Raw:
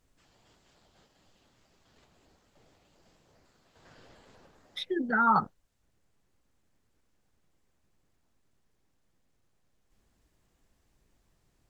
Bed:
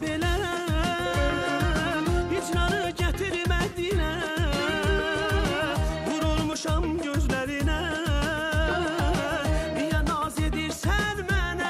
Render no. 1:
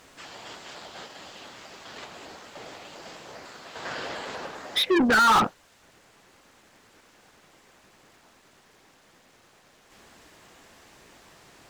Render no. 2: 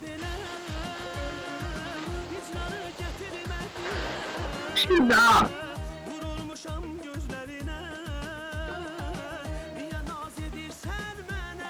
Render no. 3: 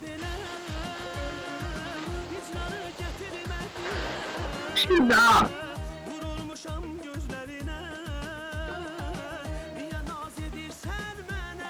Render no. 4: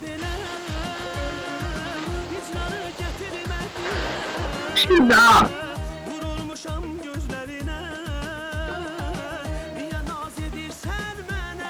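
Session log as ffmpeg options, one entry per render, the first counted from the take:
ffmpeg -i in.wav -filter_complex "[0:a]asplit=2[link_01][link_02];[link_02]highpass=frequency=720:poles=1,volume=33dB,asoftclip=type=tanh:threshold=-12.5dB[link_03];[link_01][link_03]amix=inputs=2:normalize=0,lowpass=frequency=3900:poles=1,volume=-6dB" out.wav
ffmpeg -i in.wav -i bed.wav -filter_complex "[1:a]volume=-10dB[link_01];[0:a][link_01]amix=inputs=2:normalize=0" out.wav
ffmpeg -i in.wav -af anull out.wav
ffmpeg -i in.wav -af "volume=5.5dB" out.wav

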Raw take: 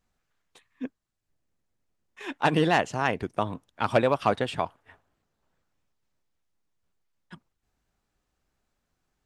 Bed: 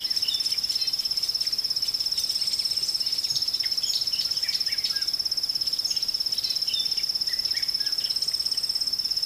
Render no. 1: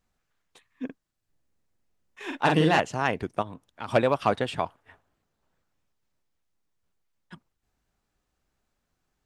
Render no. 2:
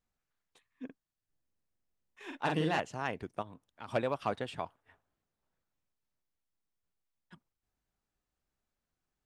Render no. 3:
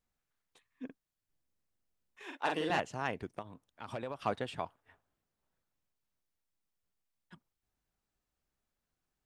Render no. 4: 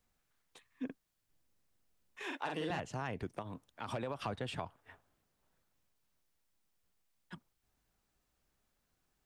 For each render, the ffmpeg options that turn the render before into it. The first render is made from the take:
ffmpeg -i in.wav -filter_complex "[0:a]asettb=1/sr,asplit=3[link_01][link_02][link_03];[link_01]atrim=end=0.854[link_04];[link_02]atrim=start=0.85:end=2.8,asetpts=PTS-STARTPTS,afade=type=in:duration=0.004:curve=qsin,afade=type=out:start_time=1.946:duration=0.004:curve=qsin,asplit=2[link_05][link_06];[link_06]adelay=44,volume=-4dB[link_07];[link_05][link_07]amix=inputs=2:normalize=0,atrim=end_sample=85995[link_08];[link_03]atrim=start=2.796[link_09];[link_04][link_08]acrossfade=duration=0.004:curve1=hsin:curve2=qsin[link_10];[link_10][link_09]acrossfade=duration=0.004:curve1=qsin:curve2=hsin,asplit=3[link_11][link_12][link_13];[link_11]afade=type=out:start_time=3.41:duration=0.02[link_14];[link_12]acompressor=threshold=-47dB:ratio=1.5:attack=3.2:release=140:knee=1:detection=peak,afade=type=in:start_time=3.41:duration=0.02,afade=type=out:start_time=3.87:duration=0.02[link_15];[link_13]afade=type=in:start_time=3.87:duration=0.02[link_16];[link_14][link_15][link_16]amix=inputs=3:normalize=0" out.wav
ffmpeg -i in.wav -af "volume=-10dB" out.wav
ffmpeg -i in.wav -filter_complex "[0:a]asettb=1/sr,asplit=3[link_01][link_02][link_03];[link_01]atrim=end=2.234[link_04];[link_02]atrim=start=2.23:end=2.7,asetpts=PTS-STARTPTS,afade=type=in:duration=0.004:curve=qsin,afade=type=out:start_time=0.466:duration=0.004:curve=qsin,highpass=350[link_05];[link_03]atrim=start=2.696[link_06];[link_04][link_05]acrossfade=duration=0.004:curve1=hsin:curve2=qsin[link_07];[link_07][link_06]acrossfade=duration=0.004:curve1=qsin:curve2=hsin,asettb=1/sr,asplit=3[link_08][link_09][link_10];[link_08]atrim=end=3.344[link_11];[link_09]atrim=start=3.34:end=4.25,asetpts=PTS-STARTPTS,afade=type=in:duration=0.004:curve=qsin,afade=type=out:start_time=0.906:duration=0.004:curve=qsin,acompressor=threshold=-35dB:ratio=6:attack=3.2:release=140:knee=1:detection=peak[link_12];[link_10]atrim=start=4.246[link_13];[link_11][link_12]acrossfade=duration=0.004:curve1=hsin:curve2=qsin[link_14];[link_14][link_13]acrossfade=duration=0.004:curve1=qsin:curve2=hsin" out.wav
ffmpeg -i in.wav -filter_complex "[0:a]acrossover=split=160[link_01][link_02];[link_02]acompressor=threshold=-40dB:ratio=5[link_03];[link_01][link_03]amix=inputs=2:normalize=0,asplit=2[link_04][link_05];[link_05]alimiter=level_in=15.5dB:limit=-24dB:level=0:latency=1:release=22,volume=-15.5dB,volume=1dB[link_06];[link_04][link_06]amix=inputs=2:normalize=0" out.wav

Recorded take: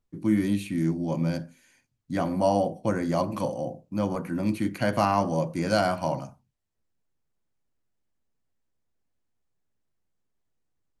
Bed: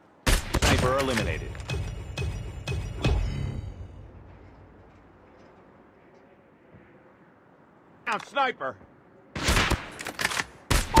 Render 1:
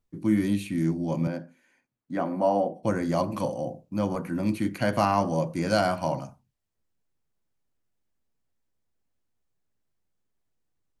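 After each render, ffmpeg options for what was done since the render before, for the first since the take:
ffmpeg -i in.wav -filter_complex "[0:a]asettb=1/sr,asplit=3[link_01][link_02][link_03];[link_01]atrim=end=1.274[link_04];[link_02]atrim=start=1.27:end=2.83,asetpts=PTS-STARTPTS,afade=type=in:duration=0.004:curve=qsin,afade=type=out:start_time=1.556:duration=0.004:curve=qsin,acrossover=split=180 2300:gain=0.112 1 0.224[link_05][link_06][link_07];[link_05][link_06][link_07]amix=inputs=3:normalize=0[link_08];[link_03]atrim=start=2.826[link_09];[link_04][link_08]acrossfade=duration=0.004:curve1=hsin:curve2=qsin[link_10];[link_10][link_09]acrossfade=duration=0.004:curve1=qsin:curve2=hsin" out.wav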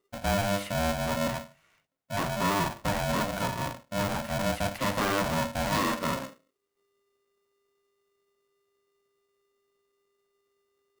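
ffmpeg -i in.wav -af "asoftclip=type=tanh:threshold=-21.5dB,aeval=exprs='val(0)*sgn(sin(2*PI*400*n/s))':channel_layout=same" out.wav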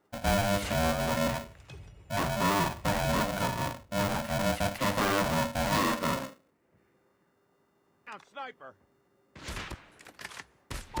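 ffmpeg -i in.wav -i bed.wav -filter_complex "[1:a]volume=-16dB[link_01];[0:a][link_01]amix=inputs=2:normalize=0" out.wav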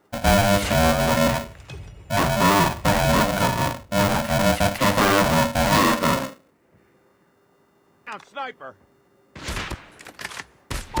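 ffmpeg -i in.wav -af "volume=9.5dB" out.wav

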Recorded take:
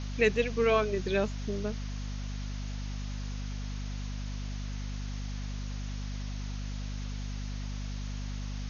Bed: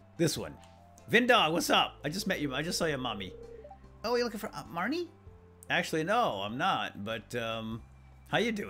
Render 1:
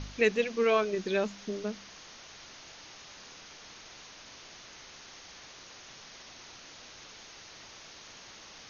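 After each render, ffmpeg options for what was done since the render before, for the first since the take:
ffmpeg -i in.wav -af "bandreject=frequency=50:width_type=h:width=4,bandreject=frequency=100:width_type=h:width=4,bandreject=frequency=150:width_type=h:width=4,bandreject=frequency=200:width_type=h:width=4,bandreject=frequency=250:width_type=h:width=4" out.wav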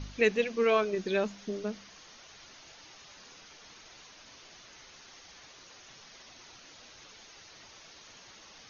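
ffmpeg -i in.wav -af "afftdn=noise_reduction=6:noise_floor=-51" out.wav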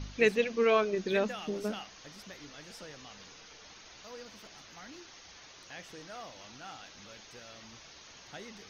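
ffmpeg -i in.wav -i bed.wav -filter_complex "[1:a]volume=-18dB[link_01];[0:a][link_01]amix=inputs=2:normalize=0" out.wav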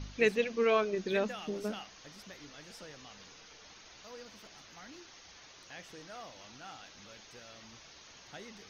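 ffmpeg -i in.wav -af "volume=-2dB" out.wav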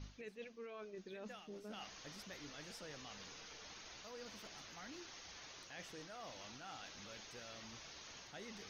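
ffmpeg -i in.wav -af "alimiter=level_in=1.5dB:limit=-24dB:level=0:latency=1:release=410,volume=-1.5dB,areverse,acompressor=threshold=-47dB:ratio=16,areverse" out.wav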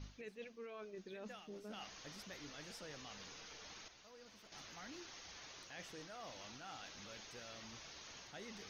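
ffmpeg -i in.wav -filter_complex "[0:a]asplit=3[link_01][link_02][link_03];[link_01]atrim=end=3.882[link_04];[link_02]atrim=start=3.878:end=4.522,asetpts=PTS-STARTPTS,volume=-8dB[link_05];[link_03]atrim=start=4.518[link_06];[link_04][link_05]acrossfade=duration=0.004:curve1=hsin:curve2=hsin[link_07];[link_07][link_06]acrossfade=duration=0.004:curve1=hsin:curve2=hsin" out.wav

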